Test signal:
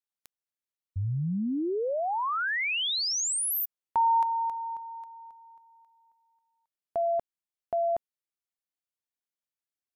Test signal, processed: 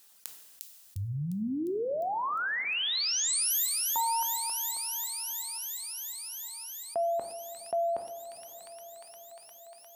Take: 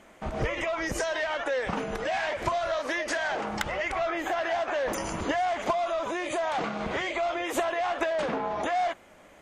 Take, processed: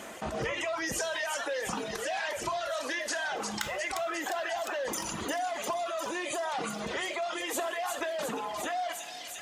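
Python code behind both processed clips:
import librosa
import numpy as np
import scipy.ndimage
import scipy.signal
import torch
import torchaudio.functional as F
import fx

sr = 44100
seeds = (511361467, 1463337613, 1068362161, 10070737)

y = fx.low_shelf(x, sr, hz=110.0, db=-8.5)
y = fx.rider(y, sr, range_db=4, speed_s=2.0)
y = scipy.signal.sosfilt(scipy.signal.butter(2, 58.0, 'highpass', fs=sr, output='sos'), y)
y = fx.high_shelf(y, sr, hz=4100.0, db=8.5)
y = fx.notch(y, sr, hz=2200.0, q=13.0)
y = fx.echo_wet_highpass(y, sr, ms=353, feedback_pct=72, hz=3100.0, wet_db=-4.5)
y = fx.dereverb_blind(y, sr, rt60_s=1.5)
y = fx.rev_double_slope(y, sr, seeds[0], early_s=0.52, late_s=4.1, knee_db=-18, drr_db=10.5)
y = fx.env_flatten(y, sr, amount_pct=50)
y = y * 10.0 ** (-7.0 / 20.0)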